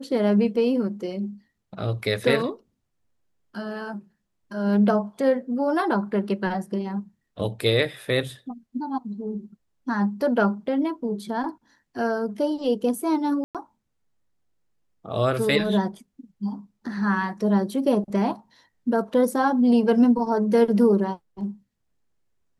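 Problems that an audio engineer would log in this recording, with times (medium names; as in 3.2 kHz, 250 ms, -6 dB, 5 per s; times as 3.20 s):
13.44–13.55 s: dropout 107 ms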